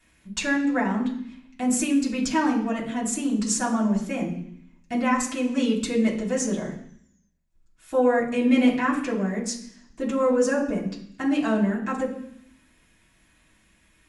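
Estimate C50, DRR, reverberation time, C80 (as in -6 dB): 7.5 dB, -7.0 dB, 0.65 s, 10.5 dB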